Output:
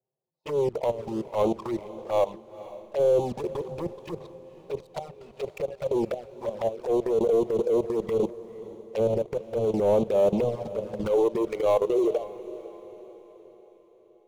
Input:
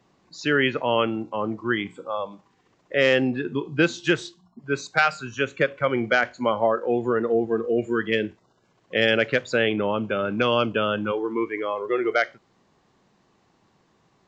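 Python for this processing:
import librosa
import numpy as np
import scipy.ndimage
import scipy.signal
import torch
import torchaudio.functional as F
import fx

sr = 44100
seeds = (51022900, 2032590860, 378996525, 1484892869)

y = fx.env_lowpass_down(x, sr, base_hz=320.0, full_db=-18.0)
y = scipy.signal.sosfilt(scipy.signal.butter(2, 210.0, 'highpass', fs=sr, output='sos'), y)
y = fx.env_lowpass(y, sr, base_hz=430.0, full_db=-22.5)
y = fx.high_shelf(y, sr, hz=3200.0, db=-7.0)
y = fx.leveller(y, sr, passes=3)
y = fx.level_steps(y, sr, step_db=20)
y = fx.fixed_phaser(y, sr, hz=650.0, stages=4)
y = fx.leveller(y, sr, passes=1)
y = fx.env_flanger(y, sr, rest_ms=7.7, full_db=-20.5)
y = fx.transient(y, sr, attack_db=-10, sustain_db=2)
y = fx.echo_diffused(y, sr, ms=492, feedback_pct=48, wet_db=-16)
y = y * 10.0 ** (2.0 / 20.0)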